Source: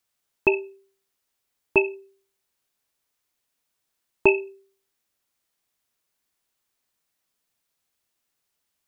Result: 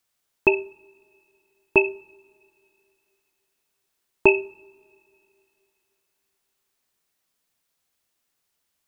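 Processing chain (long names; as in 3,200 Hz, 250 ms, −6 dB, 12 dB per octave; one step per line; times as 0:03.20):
coupled-rooms reverb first 0.59 s, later 2.9 s, from −18 dB, DRR 17 dB
level +2 dB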